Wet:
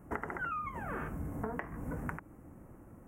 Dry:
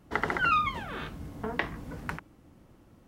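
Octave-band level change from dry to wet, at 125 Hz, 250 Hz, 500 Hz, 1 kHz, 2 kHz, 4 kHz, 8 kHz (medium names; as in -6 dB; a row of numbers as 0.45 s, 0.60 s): -1.5 dB, -2.5 dB, -4.5 dB, -9.5 dB, -10.0 dB, under -25 dB, -7.5 dB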